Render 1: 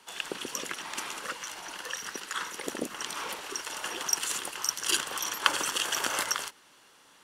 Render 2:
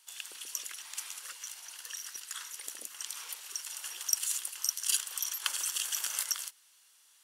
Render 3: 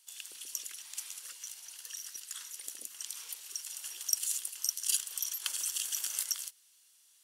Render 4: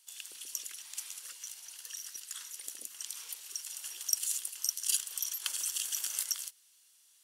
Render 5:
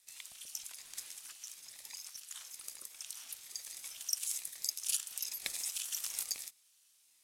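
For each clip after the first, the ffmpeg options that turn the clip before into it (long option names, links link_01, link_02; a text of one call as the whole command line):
ffmpeg -i in.wav -af "aderivative" out.wav
ffmpeg -i in.wav -af "equalizer=frequency=1100:width_type=o:width=2.5:gain=-9.5" out.wav
ffmpeg -i in.wav -af anull out.wav
ffmpeg -i in.wav -af "aeval=exprs='val(0)*sin(2*PI*540*n/s+540*0.7/1.1*sin(2*PI*1.1*n/s))':channel_layout=same,volume=-1dB" out.wav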